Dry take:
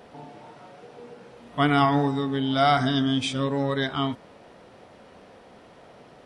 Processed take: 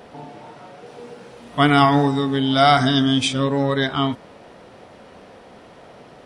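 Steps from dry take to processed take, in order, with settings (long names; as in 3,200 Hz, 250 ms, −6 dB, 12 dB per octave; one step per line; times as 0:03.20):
0:00.86–0:03.28: high-shelf EQ 4,400 Hz +6 dB
level +5.5 dB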